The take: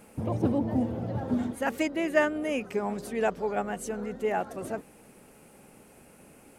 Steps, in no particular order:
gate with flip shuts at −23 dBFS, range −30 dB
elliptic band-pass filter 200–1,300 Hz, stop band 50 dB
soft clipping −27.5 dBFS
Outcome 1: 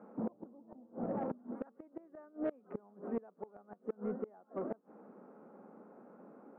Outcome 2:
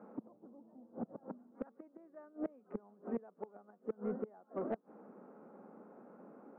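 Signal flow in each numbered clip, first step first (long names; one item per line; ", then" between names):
elliptic band-pass filter, then gate with flip, then soft clipping
gate with flip, then elliptic band-pass filter, then soft clipping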